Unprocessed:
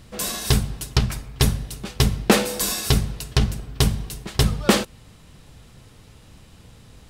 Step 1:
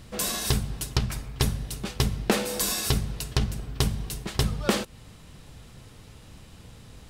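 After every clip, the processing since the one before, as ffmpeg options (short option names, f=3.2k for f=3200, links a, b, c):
-af "acompressor=threshold=-25dB:ratio=2"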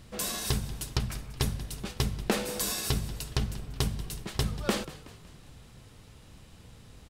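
-filter_complex "[0:a]asplit=6[a][b][c][d][e][f];[b]adelay=186,afreqshift=-55,volume=-16.5dB[g];[c]adelay=372,afreqshift=-110,volume=-22.3dB[h];[d]adelay=558,afreqshift=-165,volume=-28.2dB[i];[e]adelay=744,afreqshift=-220,volume=-34dB[j];[f]adelay=930,afreqshift=-275,volume=-39.9dB[k];[a][g][h][i][j][k]amix=inputs=6:normalize=0,volume=-4.5dB"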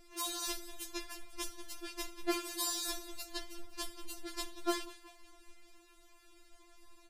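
-af "afftfilt=real='re*4*eq(mod(b,16),0)':imag='im*4*eq(mod(b,16),0)':win_size=2048:overlap=0.75,volume=-3dB"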